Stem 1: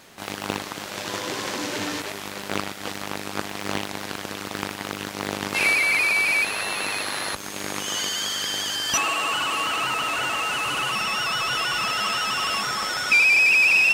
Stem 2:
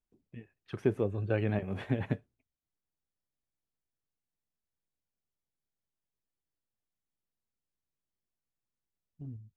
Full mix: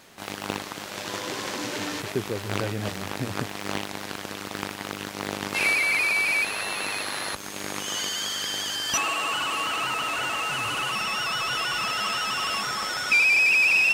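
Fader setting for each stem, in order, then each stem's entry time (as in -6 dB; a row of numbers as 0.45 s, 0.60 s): -2.5 dB, -0.5 dB; 0.00 s, 1.30 s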